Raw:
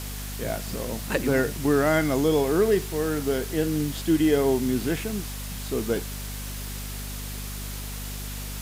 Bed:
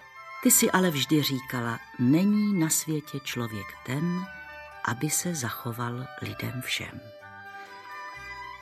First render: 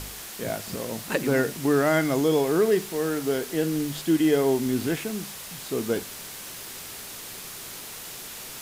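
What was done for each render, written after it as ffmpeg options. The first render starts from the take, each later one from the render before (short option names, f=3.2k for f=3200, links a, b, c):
-af "bandreject=f=50:t=h:w=4,bandreject=f=100:t=h:w=4,bandreject=f=150:t=h:w=4,bandreject=f=200:t=h:w=4,bandreject=f=250:t=h:w=4"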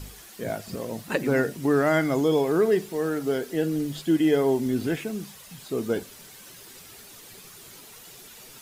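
-af "afftdn=nr=10:nf=-39"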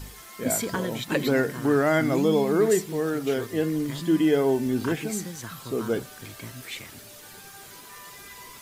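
-filter_complex "[1:a]volume=-7.5dB[a];[0:a][a]amix=inputs=2:normalize=0"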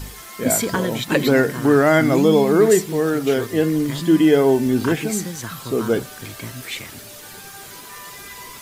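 -af "volume=7dB"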